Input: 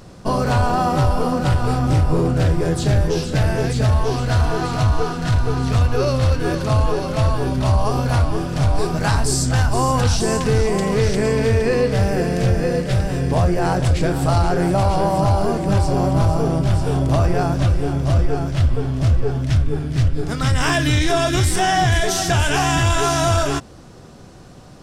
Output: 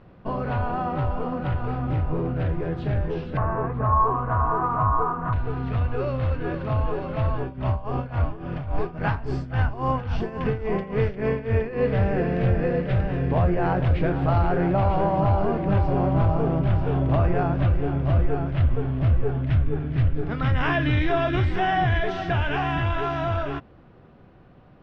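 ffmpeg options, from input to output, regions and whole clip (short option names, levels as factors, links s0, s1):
-filter_complex "[0:a]asettb=1/sr,asplit=3[s0][s1][s2];[s0]atrim=end=3.374[s3];[s1]atrim=start=3.37:end=5.33,asetpts=PTS-STARTPTS,afade=t=in:d=0.004:c=qsin,afade=t=out:st=1.956:d=0.004:c=qsin,lowpass=f=1100:t=q:w=11,aemphasis=mode=production:type=50fm[s4];[s2]atrim=start=5.326[s5];[s3][s4]acrossfade=d=0.004:c1=hsin:c2=qsin[s6];[s6][s5]acrossfade=d=0.004:c1=qsin:c2=hsin,asettb=1/sr,asplit=3[s7][s8][s9];[s7]atrim=end=7.404[s10];[s8]atrim=start=7.4:end=11.82,asetpts=PTS-STARTPTS,afade=t=in:d=0.004:c=qsin,afade=t=out:st=4.416:d=0.004:c=qsin,bandreject=f=3900:w=11,tremolo=f=3.6:d=0.81[s11];[s9]atrim=start=11.816[s12];[s10][s11]acrossfade=d=0.004:c1=hsin:c2=qsin[s13];[s13][s12]acrossfade=d=0.004:c1=qsin:c2=hsin,lowpass=f=2800:w=0.5412,lowpass=f=2800:w=1.3066,dynaudnorm=f=170:g=31:m=1.78,volume=0.376"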